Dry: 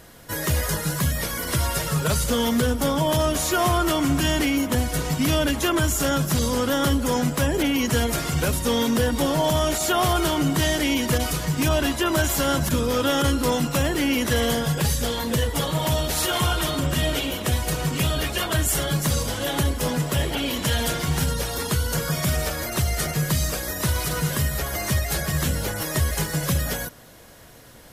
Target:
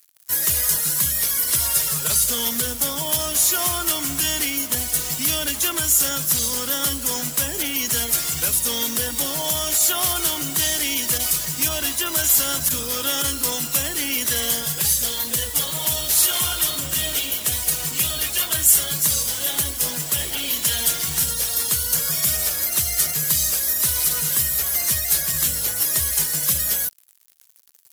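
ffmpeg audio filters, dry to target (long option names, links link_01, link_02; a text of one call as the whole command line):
ffmpeg -i in.wav -af "acrusher=bits=5:mix=0:aa=0.5,crystalizer=i=9:c=0,volume=-11dB" out.wav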